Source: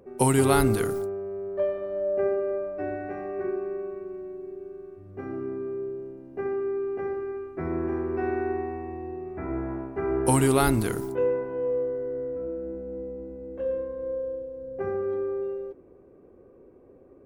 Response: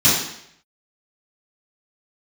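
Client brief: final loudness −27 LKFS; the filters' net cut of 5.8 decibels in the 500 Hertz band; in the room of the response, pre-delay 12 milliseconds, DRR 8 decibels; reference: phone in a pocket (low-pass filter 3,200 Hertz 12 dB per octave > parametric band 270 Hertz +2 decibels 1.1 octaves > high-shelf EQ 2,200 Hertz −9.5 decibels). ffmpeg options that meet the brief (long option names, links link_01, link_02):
-filter_complex "[0:a]equalizer=frequency=500:width_type=o:gain=-8.5,asplit=2[link_01][link_02];[1:a]atrim=start_sample=2205,adelay=12[link_03];[link_02][link_03]afir=irnorm=-1:irlink=0,volume=-28.5dB[link_04];[link_01][link_04]amix=inputs=2:normalize=0,lowpass=3200,equalizer=frequency=270:width_type=o:width=1.1:gain=2,highshelf=frequency=2200:gain=-9.5,volume=4dB"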